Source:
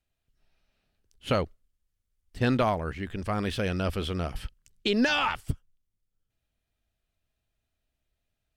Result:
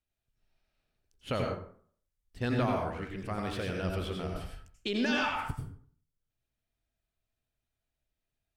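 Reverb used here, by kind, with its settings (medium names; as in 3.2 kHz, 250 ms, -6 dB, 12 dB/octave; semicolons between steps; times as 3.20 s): plate-style reverb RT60 0.53 s, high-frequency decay 0.6×, pre-delay 75 ms, DRR 0.5 dB; trim -7.5 dB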